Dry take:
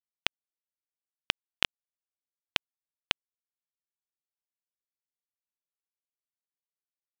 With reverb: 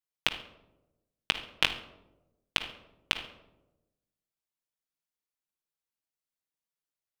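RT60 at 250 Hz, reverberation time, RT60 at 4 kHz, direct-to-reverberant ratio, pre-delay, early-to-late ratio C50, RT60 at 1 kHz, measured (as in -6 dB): 1.2 s, 1.0 s, 0.50 s, 4.0 dB, 6 ms, 10.0 dB, 0.80 s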